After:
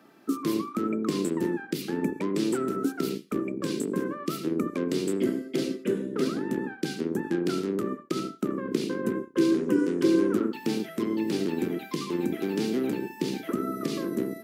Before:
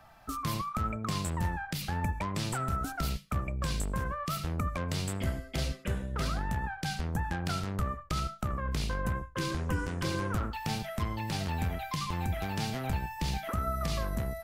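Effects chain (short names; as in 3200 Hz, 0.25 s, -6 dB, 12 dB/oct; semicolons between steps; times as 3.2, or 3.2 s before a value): octaver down 2 oct, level 0 dB; HPF 240 Hz 24 dB/oct; resonant low shelf 520 Hz +11 dB, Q 3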